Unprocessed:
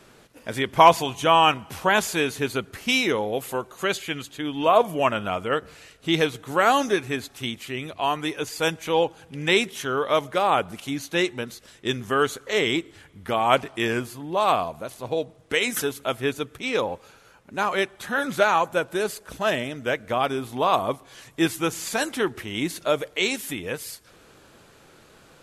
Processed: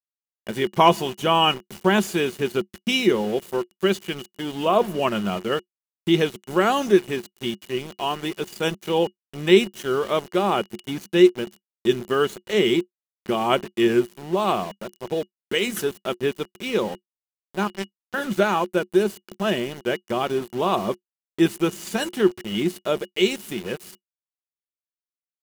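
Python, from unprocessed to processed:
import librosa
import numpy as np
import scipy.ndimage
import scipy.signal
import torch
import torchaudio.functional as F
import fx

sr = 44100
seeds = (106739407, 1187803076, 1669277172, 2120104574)

y = fx.power_curve(x, sr, exponent=3.0, at=(17.67, 18.14))
y = np.where(np.abs(y) >= 10.0 ** (-32.0 / 20.0), y, 0.0)
y = fx.small_body(y, sr, hz=(200.0, 360.0, 2900.0), ring_ms=90, db=16)
y = y * librosa.db_to_amplitude(-3.0)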